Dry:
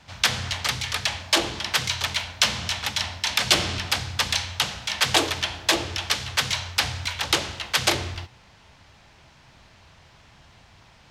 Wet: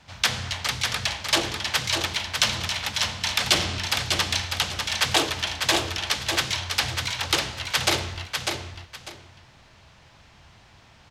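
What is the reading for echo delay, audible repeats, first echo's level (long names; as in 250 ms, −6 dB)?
598 ms, 2, −5.0 dB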